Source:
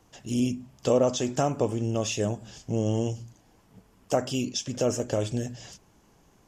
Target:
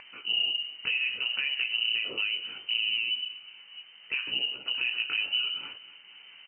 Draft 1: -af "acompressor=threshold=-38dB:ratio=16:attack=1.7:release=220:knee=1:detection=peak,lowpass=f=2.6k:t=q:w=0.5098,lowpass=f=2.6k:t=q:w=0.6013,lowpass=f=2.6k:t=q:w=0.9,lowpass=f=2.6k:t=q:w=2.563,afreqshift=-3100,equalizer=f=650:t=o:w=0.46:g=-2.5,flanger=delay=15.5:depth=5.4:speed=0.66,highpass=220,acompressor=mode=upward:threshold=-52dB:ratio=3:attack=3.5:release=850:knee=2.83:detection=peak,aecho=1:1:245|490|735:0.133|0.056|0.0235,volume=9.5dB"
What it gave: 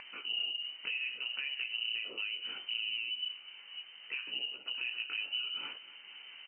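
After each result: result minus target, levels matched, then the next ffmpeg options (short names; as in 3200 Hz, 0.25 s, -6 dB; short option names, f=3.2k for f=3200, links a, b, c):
compressor: peak gain reduction +8 dB; 125 Hz band -5.0 dB
-af "acompressor=threshold=-29.5dB:ratio=16:attack=1.7:release=220:knee=1:detection=peak,lowpass=f=2.6k:t=q:w=0.5098,lowpass=f=2.6k:t=q:w=0.6013,lowpass=f=2.6k:t=q:w=0.9,lowpass=f=2.6k:t=q:w=2.563,afreqshift=-3100,equalizer=f=650:t=o:w=0.46:g=-2.5,flanger=delay=15.5:depth=5.4:speed=0.66,highpass=220,acompressor=mode=upward:threshold=-52dB:ratio=3:attack=3.5:release=850:knee=2.83:detection=peak,aecho=1:1:245|490|735:0.133|0.056|0.0235,volume=9.5dB"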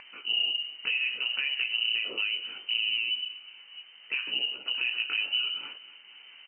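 125 Hz band -7.0 dB
-af "acompressor=threshold=-29.5dB:ratio=16:attack=1.7:release=220:knee=1:detection=peak,lowpass=f=2.6k:t=q:w=0.5098,lowpass=f=2.6k:t=q:w=0.6013,lowpass=f=2.6k:t=q:w=0.9,lowpass=f=2.6k:t=q:w=2.563,afreqshift=-3100,equalizer=f=650:t=o:w=0.46:g=-2.5,flanger=delay=15.5:depth=5.4:speed=0.66,highpass=96,acompressor=mode=upward:threshold=-52dB:ratio=3:attack=3.5:release=850:knee=2.83:detection=peak,aecho=1:1:245|490|735:0.133|0.056|0.0235,volume=9.5dB"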